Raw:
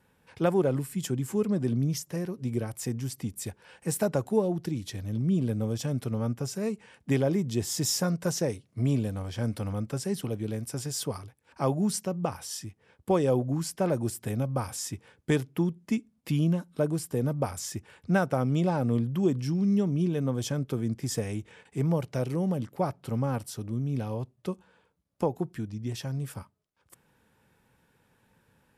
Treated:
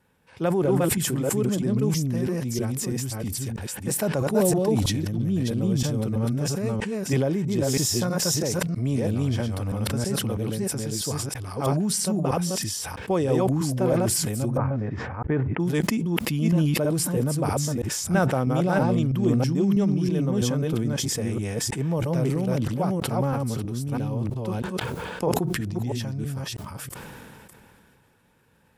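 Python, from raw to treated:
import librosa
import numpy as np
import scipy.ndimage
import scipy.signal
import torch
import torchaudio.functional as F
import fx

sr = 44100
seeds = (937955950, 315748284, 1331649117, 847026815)

y = fx.reverse_delay(x, sr, ms=324, wet_db=0)
y = fx.dmg_crackle(y, sr, seeds[0], per_s=160.0, level_db=-59.0, at=(1.83, 2.8), fade=0.02)
y = fx.lowpass(y, sr, hz=1900.0, slope=24, at=(14.57, 15.6))
y = fx.sustainer(y, sr, db_per_s=21.0)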